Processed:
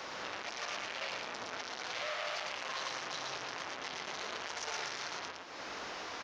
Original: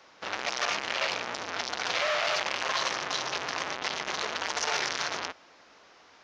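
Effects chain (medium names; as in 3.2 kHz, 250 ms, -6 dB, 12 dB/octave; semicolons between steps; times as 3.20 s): compression 3:1, threshold -48 dBFS, peak gain reduction 17.5 dB; peak limiter -42 dBFS, peak gain reduction 11.5 dB; on a send: delay 113 ms -3.5 dB; on the sum: trim +12 dB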